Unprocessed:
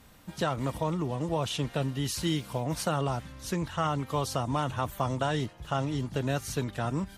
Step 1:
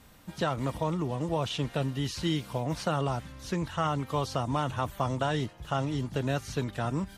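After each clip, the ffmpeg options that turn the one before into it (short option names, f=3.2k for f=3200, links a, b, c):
-filter_complex "[0:a]acrossover=split=5900[a][b];[b]acompressor=threshold=-52dB:ratio=4:attack=1:release=60[c];[a][c]amix=inputs=2:normalize=0"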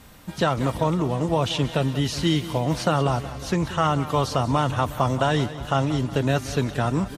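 -af "aecho=1:1:183|366|549|732|915|1098:0.188|0.105|0.0591|0.0331|0.0185|0.0104,volume=7.5dB"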